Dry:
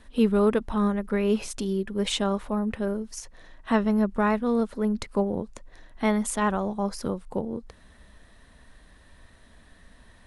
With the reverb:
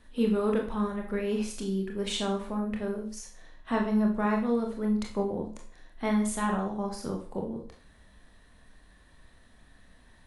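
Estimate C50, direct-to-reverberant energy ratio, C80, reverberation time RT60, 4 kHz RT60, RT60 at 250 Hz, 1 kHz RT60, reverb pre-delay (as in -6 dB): 7.5 dB, 1.0 dB, 12.0 dB, 0.45 s, 0.40 s, 0.40 s, 0.45 s, 24 ms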